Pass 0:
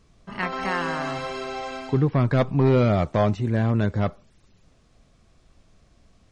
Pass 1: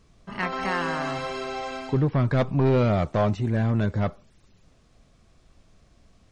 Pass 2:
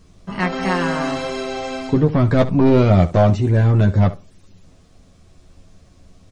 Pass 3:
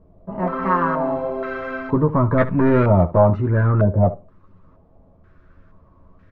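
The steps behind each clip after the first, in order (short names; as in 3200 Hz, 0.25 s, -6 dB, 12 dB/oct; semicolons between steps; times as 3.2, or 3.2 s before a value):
soft clip -13.5 dBFS, distortion -18 dB
bell 1700 Hz -5 dB 3 oct; on a send: early reflections 11 ms -4.5 dB, 71 ms -16 dB; on the sum: gain +8.5 dB
Butterworth band-stop 760 Hz, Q 6; stepped low-pass 2.1 Hz 710–1700 Hz; gain -3 dB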